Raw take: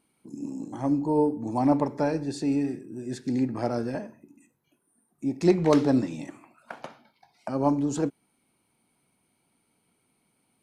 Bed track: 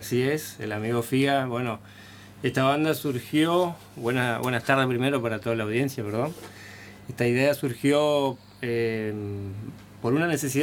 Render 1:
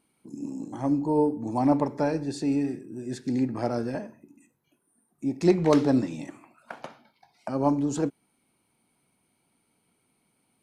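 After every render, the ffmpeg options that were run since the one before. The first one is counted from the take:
-af anull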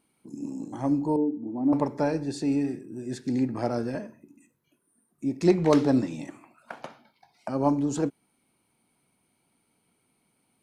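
-filter_complex "[0:a]asettb=1/sr,asplit=3[a][b][c];[a]atrim=end=1.164[d];[b]atrim=start=1.16:end=1.73,asetpts=PTS-STARTPTS,afade=t=in:d=0.004:c=qsin,afade=t=out:st=0.566:d=0.004:c=qsin,bandpass=f=290:t=q:w=2[e];[c]atrim=start=1.726[f];[d][e]acrossfade=d=0.004:c1=hsin:c2=qsin[g];[g][f]acrossfade=d=0.004:c1=qsin:c2=hsin,asettb=1/sr,asplit=3[h][i][j];[h]atrim=end=3.944[k];[i]atrim=start=3.94:end=5.47,asetpts=PTS-STARTPTS,afade=t=in:d=0.004:c=qsin,afade=t=out:st=1.526:d=0.004:c=qsin,equalizer=f=790:w=5.9:g=-9.5[l];[j]atrim=start=5.466[m];[k][l]acrossfade=d=0.004:c1=hsin:c2=qsin[n];[n][m]acrossfade=d=0.004:c1=qsin:c2=hsin"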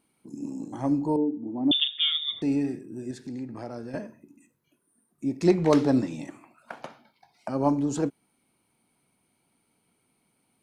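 -filter_complex "[0:a]asettb=1/sr,asplit=3[a][b][c];[a]atrim=end=1.714[d];[b]atrim=start=1.71:end=2.42,asetpts=PTS-STARTPTS,afade=t=in:d=0.004:c=qsin,afade=t=out:st=0.706:d=0.004:c=qsin,lowpass=f=3.2k:t=q:w=0.5098,lowpass=f=3.2k:t=q:w=0.6013,lowpass=f=3.2k:t=q:w=0.9,lowpass=f=3.2k:t=q:w=2.563,afreqshift=-3800[e];[c]atrim=start=2.416[f];[d][e]acrossfade=d=0.004:c1=hsin:c2=qsin[g];[g][f]acrossfade=d=0.004:c1=qsin:c2=hsin,asettb=1/sr,asplit=3[h][i][j];[h]atrim=end=3.114[k];[i]atrim=start=3.11:end=3.94,asetpts=PTS-STARTPTS,afade=t=in:d=0.004:c=qsin,afade=t=out:st=0.826:d=0.004:c=qsin,acompressor=threshold=-40dB:ratio=2:attack=3.2:release=140:knee=1:detection=peak[l];[j]atrim=start=3.936[m];[k][l]acrossfade=d=0.004:c1=hsin:c2=qsin[n];[n][m]acrossfade=d=0.004:c1=qsin:c2=hsin"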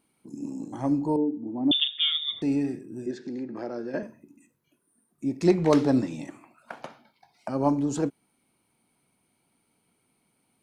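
-filter_complex "[0:a]asettb=1/sr,asplit=3[a][b][c];[a]atrim=end=3.064[d];[b]atrim=start=3.06:end=4.03,asetpts=PTS-STARTPTS,afade=t=in:d=0.004:c=qsin,afade=t=out:st=0.966:d=0.004:c=qsin,highpass=190,equalizer=f=200:t=q:w=4:g=5,equalizer=f=360:t=q:w=4:g=8,equalizer=f=530:t=q:w=4:g=5,equalizer=f=1.6k:t=q:w=4:g=5,lowpass=f=6.3k:w=0.5412,lowpass=f=6.3k:w=1.3066[e];[c]atrim=start=4.026[f];[d][e]acrossfade=d=0.004:c1=hsin:c2=qsin[g];[g][f]acrossfade=d=0.004:c1=qsin:c2=hsin"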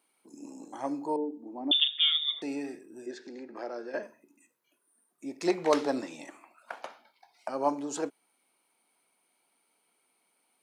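-af "highpass=500"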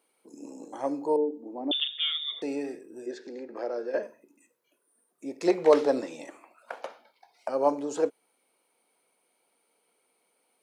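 -filter_complex "[0:a]equalizer=f=490:t=o:w=0.62:g=9.5,acrossover=split=3200[a][b];[b]acompressor=threshold=-37dB:ratio=4:attack=1:release=60[c];[a][c]amix=inputs=2:normalize=0"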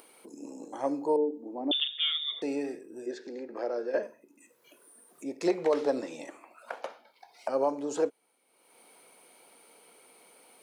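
-af "acompressor=mode=upward:threshold=-44dB:ratio=2.5,alimiter=limit=-16.5dB:level=0:latency=1:release=248"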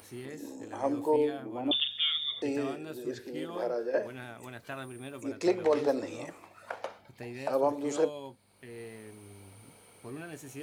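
-filter_complex "[1:a]volume=-19dB[a];[0:a][a]amix=inputs=2:normalize=0"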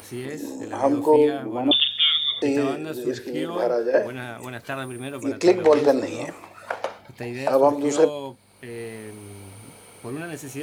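-af "volume=10dB"

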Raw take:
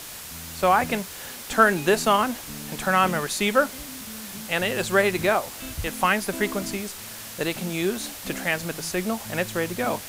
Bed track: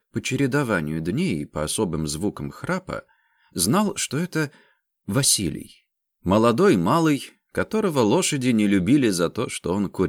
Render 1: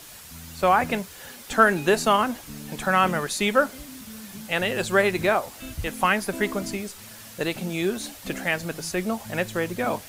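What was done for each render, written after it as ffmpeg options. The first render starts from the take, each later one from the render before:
-af "afftdn=nr=7:nf=-39"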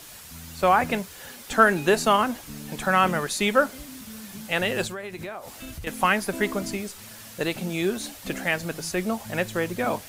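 -filter_complex "[0:a]asettb=1/sr,asplit=3[a][b][c];[a]atrim=end=4.874[d];[b]atrim=start=4.87:end=5.87,asetpts=PTS-STARTPTS,afade=t=in:d=0.004:c=qsin,afade=t=out:st=0.996:d=0.004:c=qsin,acompressor=threshold=-33dB:ratio=5:attack=3.2:release=140:knee=1:detection=peak[e];[c]atrim=start=5.866[f];[d][e]acrossfade=d=0.004:c1=hsin:c2=qsin[g];[g][f]acrossfade=d=0.004:c1=qsin:c2=hsin"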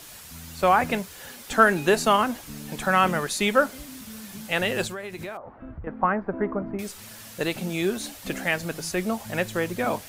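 -filter_complex "[0:a]asettb=1/sr,asplit=3[a][b][c];[a]atrim=end=5.374[d];[b]atrim=start=5.37:end=6.79,asetpts=PTS-STARTPTS,afade=t=in:d=0.004:c=qsin,afade=t=out:st=1.416:d=0.004:c=qsin,lowpass=f=1.4k:w=0.5412,lowpass=f=1.4k:w=1.3066[e];[c]atrim=start=6.786[f];[d][e]acrossfade=d=0.004:c1=hsin:c2=qsin[g];[g][f]acrossfade=d=0.004:c1=qsin:c2=hsin"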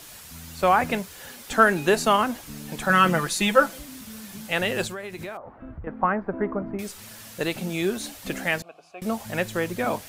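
-filter_complex "[0:a]asettb=1/sr,asplit=3[a][b][c];[a]atrim=end=2.894[d];[b]atrim=start=2.89:end=3.79,asetpts=PTS-STARTPTS,afade=t=in:d=0.004:c=qsin,afade=t=out:st=0.896:d=0.004:c=qsin,aecho=1:1:6:0.74,atrim=end_sample=39690[e];[c]atrim=start=3.786[f];[d][e]acrossfade=d=0.004:c1=hsin:c2=qsin[g];[g][f]acrossfade=d=0.004:c1=qsin:c2=hsin,asettb=1/sr,asplit=3[h][i][j];[h]atrim=end=8.624[k];[i]atrim=start=8.62:end=9.02,asetpts=PTS-STARTPTS,afade=t=in:d=0.004:c=qsin,afade=t=out:st=0.396:d=0.004:c=qsin,asplit=3[l][m][n];[l]bandpass=f=730:t=q:w=8,volume=0dB[o];[m]bandpass=f=1.09k:t=q:w=8,volume=-6dB[p];[n]bandpass=f=2.44k:t=q:w=8,volume=-9dB[q];[o][p][q]amix=inputs=3:normalize=0[r];[j]atrim=start=9.016[s];[k][r]acrossfade=d=0.004:c1=hsin:c2=qsin[t];[t][s]acrossfade=d=0.004:c1=qsin:c2=hsin"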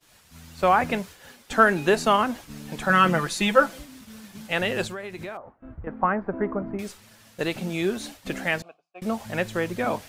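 -af "agate=range=-33dB:threshold=-36dB:ratio=3:detection=peak,highshelf=f=8.2k:g=-9.5"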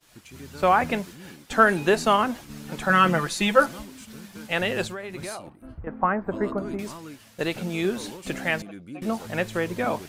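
-filter_complex "[1:a]volume=-22dB[a];[0:a][a]amix=inputs=2:normalize=0"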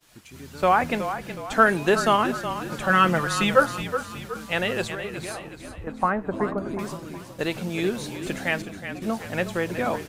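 -filter_complex "[0:a]asplit=6[a][b][c][d][e][f];[b]adelay=369,afreqshift=-32,volume=-10dB[g];[c]adelay=738,afreqshift=-64,volume=-16.7dB[h];[d]adelay=1107,afreqshift=-96,volume=-23.5dB[i];[e]adelay=1476,afreqshift=-128,volume=-30.2dB[j];[f]adelay=1845,afreqshift=-160,volume=-37dB[k];[a][g][h][i][j][k]amix=inputs=6:normalize=0"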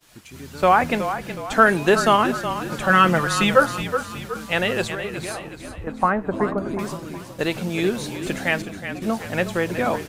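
-af "volume=3.5dB,alimiter=limit=-3dB:level=0:latency=1"

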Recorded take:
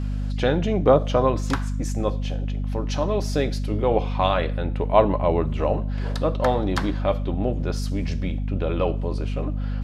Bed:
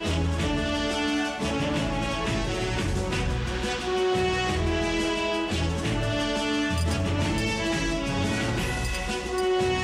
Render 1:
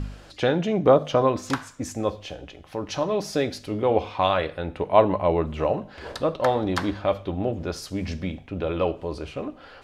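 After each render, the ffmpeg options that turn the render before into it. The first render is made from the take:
-af "bandreject=f=50:t=h:w=4,bandreject=f=100:t=h:w=4,bandreject=f=150:t=h:w=4,bandreject=f=200:t=h:w=4,bandreject=f=250:t=h:w=4"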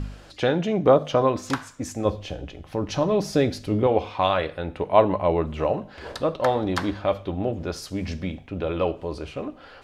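-filter_complex "[0:a]asettb=1/sr,asplit=3[a][b][c];[a]atrim=end=2.054[d];[b]atrim=start=2.05:end=3.87,asetpts=PTS-STARTPTS,afade=t=in:d=0.004:c=qsin,afade=t=out:st=1.816:d=0.004:c=qsin,lowshelf=f=320:g=8.5[e];[c]atrim=start=3.866[f];[d][e]acrossfade=d=0.004:c1=hsin:c2=qsin[g];[g][f]acrossfade=d=0.004:c1=qsin:c2=hsin"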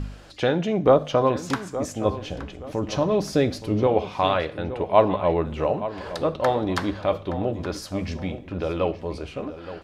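-filter_complex "[0:a]asplit=2[a][b];[b]adelay=871,lowpass=f=3.3k:p=1,volume=-13dB,asplit=2[c][d];[d]adelay=871,lowpass=f=3.3k:p=1,volume=0.33,asplit=2[e][f];[f]adelay=871,lowpass=f=3.3k:p=1,volume=0.33[g];[a][c][e][g]amix=inputs=4:normalize=0"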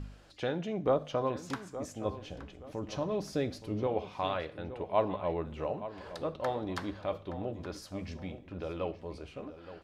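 -af "volume=-11.5dB"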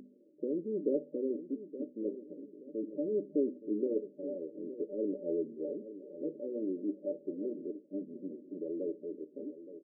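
-af "afftfilt=real='re*between(b*sr/4096,160,600)':imag='im*between(b*sr/4096,160,600)':win_size=4096:overlap=0.75,aecho=1:1:2.9:0.77"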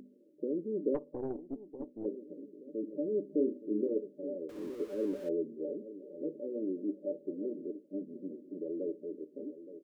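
-filter_complex "[0:a]asplit=3[a][b][c];[a]afade=t=out:st=0.94:d=0.02[d];[b]aeval=exprs='(tanh(22.4*val(0)+0.65)-tanh(0.65))/22.4':c=same,afade=t=in:st=0.94:d=0.02,afade=t=out:st=2.04:d=0.02[e];[c]afade=t=in:st=2.04:d=0.02[f];[d][e][f]amix=inputs=3:normalize=0,asettb=1/sr,asplit=3[g][h][i];[g]atrim=end=3.264[j];[h]atrim=start=3.26:end=3.89,asetpts=PTS-STARTPTS,afade=t=in:d=0.004:c=qsin,afade=t=out:st=0.626:d=0.004:c=qsin,asplit=2[k][l];[l]adelay=33,volume=-6.5dB[m];[k][m]amix=inputs=2:normalize=0,atrim=end_sample=27783[n];[i]atrim=start=3.886[o];[j][n]acrossfade=d=0.004:c1=hsin:c2=qsin[p];[p][o]acrossfade=d=0.004:c1=qsin:c2=hsin,asettb=1/sr,asplit=3[q][r][s];[q]atrim=end=4.494[t];[r]atrim=start=4.49:end=5.29,asetpts=PTS-STARTPTS,afade=t=in:d=0.004:c=qsin,afade=t=out:st=0.796:d=0.004:c=qsin,aeval=exprs='val(0)+0.5*0.00398*sgn(val(0))':c=same[u];[s]atrim=start=5.286[v];[t][u]acrossfade=d=0.004:c1=hsin:c2=qsin[w];[w][v]acrossfade=d=0.004:c1=qsin:c2=hsin"

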